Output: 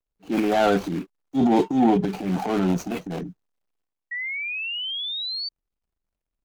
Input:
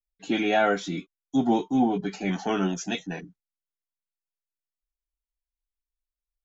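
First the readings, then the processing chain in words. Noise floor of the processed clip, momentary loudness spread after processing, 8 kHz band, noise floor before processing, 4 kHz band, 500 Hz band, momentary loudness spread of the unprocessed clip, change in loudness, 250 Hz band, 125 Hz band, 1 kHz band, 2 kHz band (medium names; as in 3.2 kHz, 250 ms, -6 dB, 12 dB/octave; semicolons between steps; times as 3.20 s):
-85 dBFS, 13 LU, no reading, under -85 dBFS, +9.5 dB, +4.0 dB, 12 LU, +2.0 dB, +4.0 dB, +5.5 dB, +3.0 dB, +3.0 dB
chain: median filter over 25 samples; transient shaper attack -7 dB, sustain +9 dB; painted sound rise, 4.11–5.49 s, 1.9–4.6 kHz -34 dBFS; trim +4.5 dB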